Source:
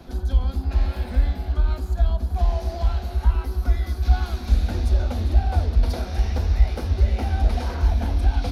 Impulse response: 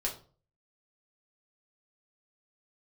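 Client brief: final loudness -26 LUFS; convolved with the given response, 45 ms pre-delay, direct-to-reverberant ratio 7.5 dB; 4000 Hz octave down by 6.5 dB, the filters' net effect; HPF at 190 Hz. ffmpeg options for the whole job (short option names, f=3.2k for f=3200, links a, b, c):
-filter_complex "[0:a]highpass=190,equalizer=f=4k:t=o:g=-8,asplit=2[a][b];[1:a]atrim=start_sample=2205,adelay=45[c];[b][c]afir=irnorm=-1:irlink=0,volume=-11dB[d];[a][d]amix=inputs=2:normalize=0,volume=8.5dB"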